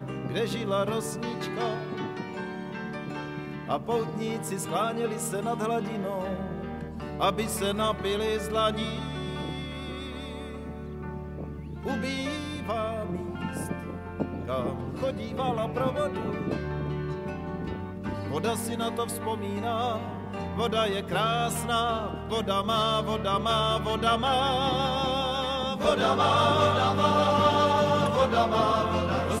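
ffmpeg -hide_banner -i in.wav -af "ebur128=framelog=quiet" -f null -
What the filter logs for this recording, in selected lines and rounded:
Integrated loudness:
  I:         -28.3 LUFS
  Threshold: -38.3 LUFS
Loudness range:
  LRA:         9.5 LU
  Threshold: -48.6 LUFS
  LRA low:   -33.1 LUFS
  LRA high:  -23.6 LUFS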